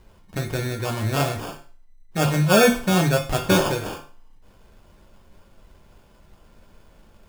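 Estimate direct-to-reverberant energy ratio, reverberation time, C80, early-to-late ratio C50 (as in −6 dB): 0.5 dB, 0.40 s, 13.5 dB, 9.0 dB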